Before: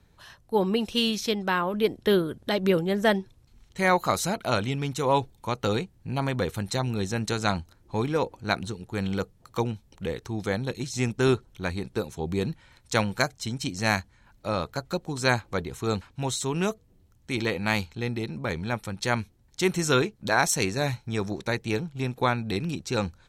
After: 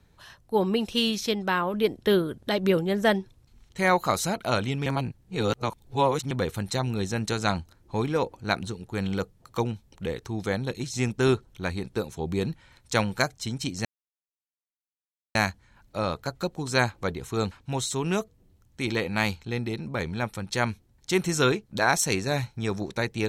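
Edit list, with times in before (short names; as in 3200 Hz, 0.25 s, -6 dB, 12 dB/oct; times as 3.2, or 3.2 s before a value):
4.86–6.31 reverse
13.85 insert silence 1.50 s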